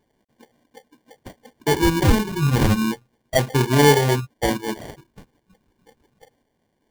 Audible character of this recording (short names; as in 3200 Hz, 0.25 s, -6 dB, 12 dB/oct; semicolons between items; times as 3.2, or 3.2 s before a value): a quantiser's noise floor 12-bit, dither none; phasing stages 8, 0.32 Hz, lowest notch 560–1200 Hz; aliases and images of a low sample rate 1300 Hz, jitter 0%; tremolo triangle 0.87 Hz, depth 40%